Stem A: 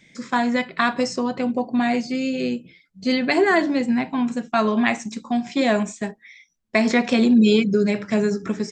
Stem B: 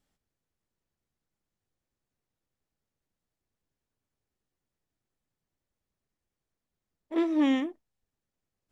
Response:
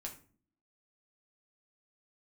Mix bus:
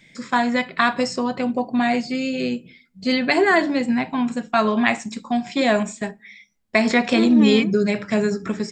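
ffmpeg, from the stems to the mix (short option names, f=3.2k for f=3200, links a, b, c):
-filter_complex "[0:a]equalizer=f=310:t=o:w=1.3:g=-3.5,bandreject=f=6.1k:w=6.7,volume=1.5dB,asplit=2[a][b];[b]volume=-14dB[c];[1:a]volume=2dB[d];[2:a]atrim=start_sample=2205[e];[c][e]afir=irnorm=-1:irlink=0[f];[a][d][f]amix=inputs=3:normalize=0"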